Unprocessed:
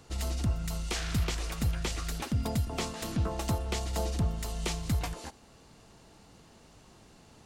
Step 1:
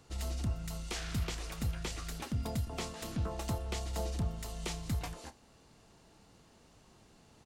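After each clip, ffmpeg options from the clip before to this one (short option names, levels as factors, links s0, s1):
-filter_complex "[0:a]asplit=2[s0][s1];[s1]adelay=29,volume=0.211[s2];[s0][s2]amix=inputs=2:normalize=0,volume=0.531"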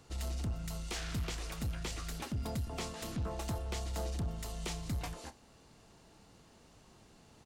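-af "asoftclip=type=tanh:threshold=0.0266,volume=1.12"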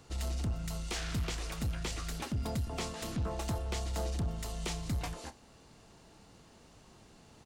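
-af "equalizer=f=13000:w=2:g=-3.5,volume=1.33"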